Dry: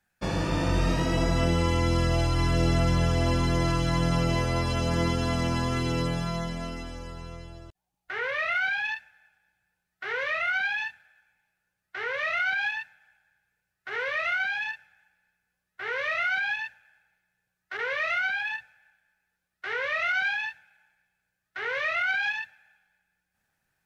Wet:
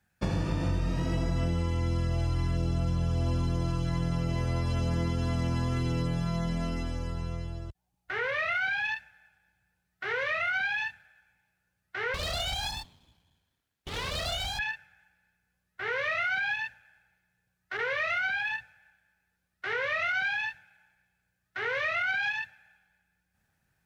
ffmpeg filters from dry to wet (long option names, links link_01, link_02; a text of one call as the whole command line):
ffmpeg -i in.wav -filter_complex "[0:a]asettb=1/sr,asplit=3[link_01][link_02][link_03];[link_01]atrim=end=2.574[link_04];[link_02]atrim=start=2.57:end=3.85,asetpts=PTS-STARTPTS,afade=type=in:duration=0.004:curve=qsin,afade=type=out:start_time=1.276:duration=0.004:curve=qsin,equalizer=frequency=1900:width=6.5:gain=-12.5[link_05];[link_03]atrim=start=3.846[link_06];[link_04][link_05]acrossfade=duration=0.004:curve1=hsin:curve2=qsin[link_07];[link_07][link_06]acrossfade=duration=0.004:curve1=qsin:curve2=hsin,asettb=1/sr,asplit=3[link_08][link_09][link_10];[link_08]atrim=end=12.144[link_11];[link_09]atrim=start=12.14:end=14.59,asetpts=PTS-STARTPTS,afade=type=in:duration=0.004:curve=qsin,afade=type=out:start_time=2.446:duration=0.004:curve=qsin,aeval=exprs='abs(val(0))':channel_layout=same[link_12];[link_10]atrim=start=14.586[link_13];[link_11][link_12]acrossfade=duration=0.004:curve1=hsin:curve2=qsin[link_14];[link_14][link_13]acrossfade=duration=0.004:curve1=qsin:curve2=hsin,highpass=50,lowshelf=frequency=190:gain=11.5,acompressor=threshold=-26dB:ratio=6" out.wav